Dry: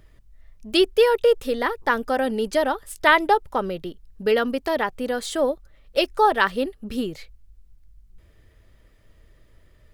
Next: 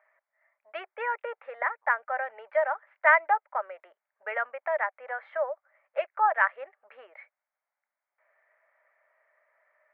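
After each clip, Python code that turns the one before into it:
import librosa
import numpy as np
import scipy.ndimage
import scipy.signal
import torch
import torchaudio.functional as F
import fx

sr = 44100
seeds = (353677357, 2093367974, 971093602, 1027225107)

y = scipy.signal.sosfilt(scipy.signal.cheby1(4, 1.0, [600.0, 2200.0], 'bandpass', fs=sr, output='sos'), x)
y = fx.dynamic_eq(y, sr, hz=870.0, q=1.0, threshold_db=-34.0, ratio=4.0, max_db=-5)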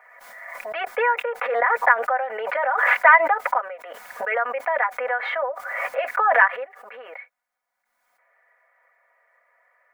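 y = x + 0.96 * np.pad(x, (int(4.1 * sr / 1000.0), 0))[:len(x)]
y = fx.pre_swell(y, sr, db_per_s=33.0)
y = y * librosa.db_to_amplitude(3.5)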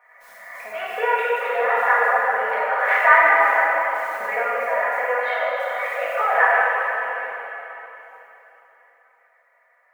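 y = fx.rev_plate(x, sr, seeds[0], rt60_s=3.5, hf_ratio=0.95, predelay_ms=0, drr_db=-8.5)
y = y * librosa.db_to_amplitude(-7.0)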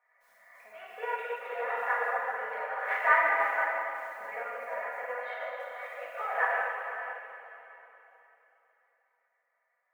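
y = x + 10.0 ** (-9.5 / 20.0) * np.pad(x, (int(490 * sr / 1000.0), 0))[:len(x)]
y = fx.upward_expand(y, sr, threshold_db=-28.0, expansion=1.5)
y = y * librosa.db_to_amplitude(-9.0)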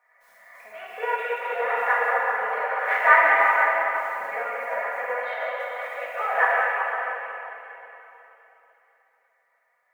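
y = fx.echo_stepped(x, sr, ms=186, hz=2600.0, octaves=-1.4, feedback_pct=70, wet_db=-2.5)
y = y * librosa.db_to_amplitude(7.5)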